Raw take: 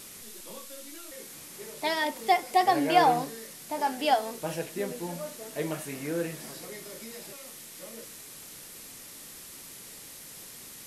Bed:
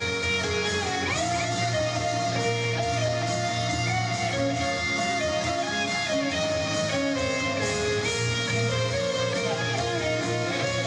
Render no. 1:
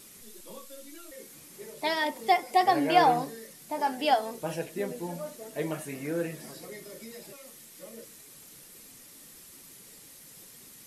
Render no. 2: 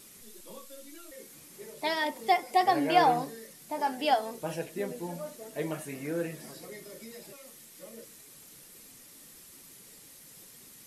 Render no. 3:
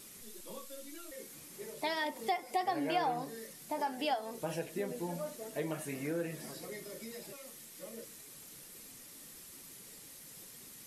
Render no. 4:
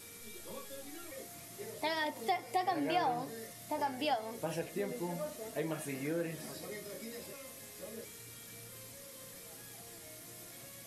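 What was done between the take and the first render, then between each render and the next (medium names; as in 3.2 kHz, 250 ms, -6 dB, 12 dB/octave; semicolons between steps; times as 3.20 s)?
noise reduction 7 dB, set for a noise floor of -46 dBFS
trim -1.5 dB
compression 2.5:1, threshold -34 dBFS, peak gain reduction 11.5 dB
add bed -30 dB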